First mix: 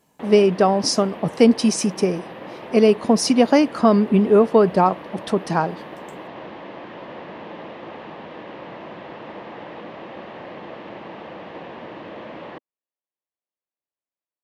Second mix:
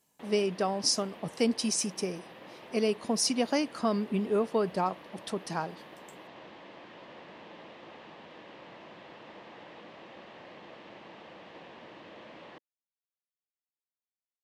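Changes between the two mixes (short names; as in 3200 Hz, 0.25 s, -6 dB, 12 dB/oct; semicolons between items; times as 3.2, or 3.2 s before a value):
speech: add high shelf 9800 Hz -9 dB; master: add pre-emphasis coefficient 0.8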